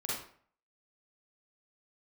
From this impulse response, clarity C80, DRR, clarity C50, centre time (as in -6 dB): 5.0 dB, -7.0 dB, -1.5 dB, 60 ms